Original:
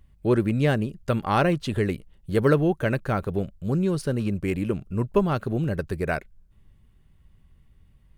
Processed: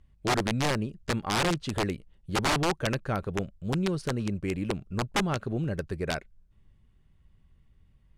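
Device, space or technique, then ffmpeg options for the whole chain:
overflowing digital effects unit: -af "aeval=exprs='(mod(5.62*val(0)+1,2)-1)/5.62':c=same,lowpass=8200,volume=0.596"

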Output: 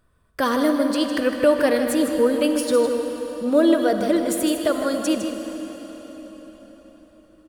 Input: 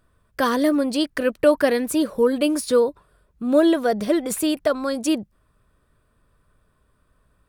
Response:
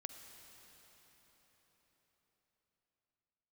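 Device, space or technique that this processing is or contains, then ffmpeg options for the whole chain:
cave: -filter_complex "[0:a]aecho=1:1:156:0.376[s0];[1:a]atrim=start_sample=2205[s1];[s0][s1]afir=irnorm=-1:irlink=0,volume=1.5"

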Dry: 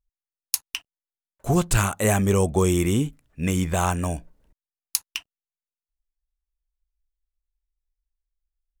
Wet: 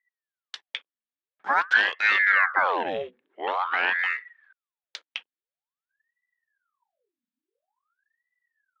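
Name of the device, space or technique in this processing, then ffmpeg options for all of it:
voice changer toy: -filter_complex "[0:a]aeval=exprs='val(0)*sin(2*PI*1100*n/s+1100*0.8/0.48*sin(2*PI*0.48*n/s))':c=same,highpass=450,equalizer=f=670:t=q:w=4:g=-3,equalizer=f=1700:t=q:w=4:g=5,equalizer=f=3600:t=q:w=4:g=4,lowpass=f=3800:w=0.5412,lowpass=f=3800:w=1.3066,asettb=1/sr,asplit=3[s0][s1][s2];[s0]atrim=end=2.294[s3];[s1]atrim=start=2.29:end=3.99,asetpts=PTS-STARTPTS,afade=t=in:d=0.004:c=qsin,afade=t=out:st=1.696:d=0.004:c=qsin,lowpass=3400[s4];[s2]atrim=start=3.986[s5];[s3][s4]acrossfade=d=0.004:c1=hsin:c2=qsin[s6];[s6][s5]acrossfade=d=0.004:c1=qsin:c2=hsin"

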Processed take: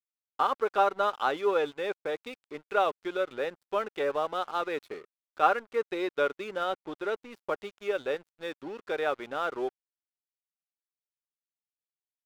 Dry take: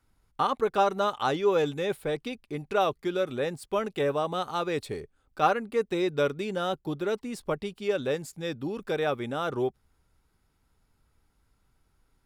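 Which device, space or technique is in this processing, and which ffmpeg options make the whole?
pocket radio on a weak battery: -af "highpass=390,lowpass=3400,aeval=exprs='sgn(val(0))*max(abs(val(0))-0.00422,0)':c=same,equalizer=f=1400:t=o:w=0.22:g=4"

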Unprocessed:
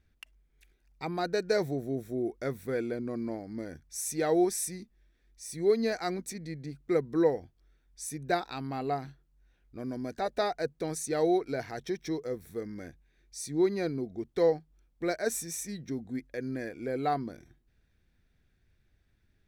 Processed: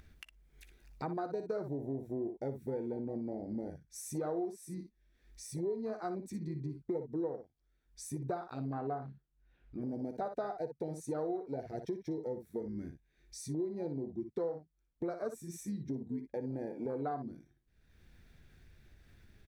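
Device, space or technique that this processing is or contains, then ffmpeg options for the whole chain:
upward and downward compression: -filter_complex "[0:a]asettb=1/sr,asplit=3[s0][s1][s2];[s0]atrim=end=8.744[s3];[s1]atrim=start=8.74:end=9.82,asetpts=PTS-STARTPTS,afade=t=in:d=0.004:c=qsin,afade=t=out:st=1.076:d=0.004:c=qsin,lowpass=3600[s4];[s2]atrim=start=9.816[s5];[s3][s4]acrossfade=d=0.004:c1=hsin:c2=qsin[s6];[s6][s5]acrossfade=d=0.004:c1=qsin:c2=hsin,afwtdn=0.0224,aecho=1:1:14|59:0.178|0.316,acompressor=mode=upward:threshold=0.00631:ratio=2.5,acompressor=threshold=0.0112:ratio=5,volume=1.5"

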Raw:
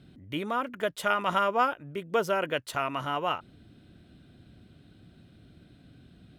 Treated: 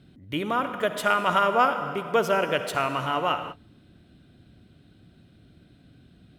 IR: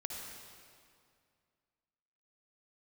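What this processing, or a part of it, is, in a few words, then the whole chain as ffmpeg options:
keyed gated reverb: -filter_complex "[0:a]asplit=3[s0][s1][s2];[1:a]atrim=start_sample=2205[s3];[s1][s3]afir=irnorm=-1:irlink=0[s4];[s2]apad=whole_len=281653[s5];[s4][s5]sidechaingate=range=0.0224:threshold=0.00447:ratio=16:detection=peak,volume=0.841[s6];[s0][s6]amix=inputs=2:normalize=0"

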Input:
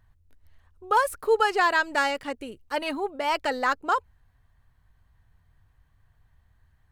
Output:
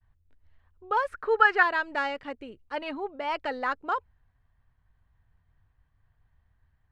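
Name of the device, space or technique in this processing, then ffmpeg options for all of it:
hearing-loss simulation: -filter_complex "[0:a]lowpass=3300,agate=range=0.0224:threshold=0.001:ratio=3:detection=peak,asettb=1/sr,asplit=3[s0][s1][s2];[s0]atrim=end=1.084[s3];[s1]atrim=start=1.08:end=1.63,asetpts=PTS-STARTPTS,afade=t=in:d=0.004:c=qsin,afade=t=out:st=0.546:d=0.004:c=qsin,equalizer=f=1600:t=o:w=0.79:g=13.5[s4];[s2]atrim=start=1.626[s5];[s3][s4]acrossfade=d=0.004:c1=hsin:c2=qsin[s6];[s6][s5]acrossfade=d=0.004:c1=qsin:c2=hsin,volume=0.596"

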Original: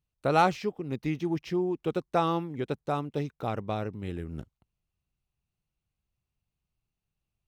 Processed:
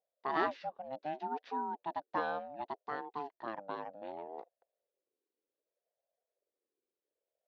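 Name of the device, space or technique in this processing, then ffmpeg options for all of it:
voice changer toy: -filter_complex "[0:a]asettb=1/sr,asplit=3[s0][s1][s2];[s0]atrim=end=2.964[s3];[s1]atrim=start=2.96:end=4.02,asetpts=PTS-STARTPTS,afade=t=in:d=0.004:c=qsin,afade=t=out:st=1.056:d=0.004:c=qsin,highpass=130[s4];[s2]atrim=start=4.016[s5];[s3][s4]acrossfade=d=0.004:c1=hsin:c2=qsin[s6];[s6][s5]acrossfade=d=0.004:c1=qsin:c2=hsin,aeval=exprs='val(0)*sin(2*PI*490*n/s+490*0.25/0.66*sin(2*PI*0.66*n/s))':c=same,highpass=410,equalizer=f=1300:t=q:w=4:g=-5,equalizer=f=2200:t=q:w=4:g=-7,equalizer=f=3100:t=q:w=4:g=-8,lowpass=f=3900:w=0.5412,lowpass=f=3900:w=1.3066,volume=0.708"

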